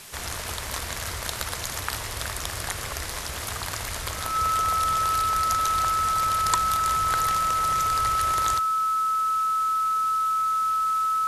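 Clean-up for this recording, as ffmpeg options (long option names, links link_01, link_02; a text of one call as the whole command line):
ffmpeg -i in.wav -af "adeclick=threshold=4,bandreject=frequency=1300:width=30,afwtdn=0.0079" out.wav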